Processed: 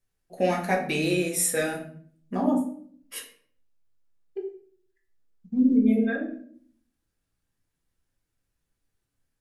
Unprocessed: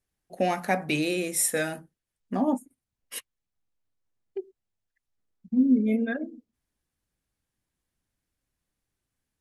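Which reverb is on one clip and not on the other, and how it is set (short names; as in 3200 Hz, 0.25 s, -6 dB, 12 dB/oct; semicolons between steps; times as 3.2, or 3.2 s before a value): shoebox room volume 67 m³, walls mixed, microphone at 0.75 m; gain -2 dB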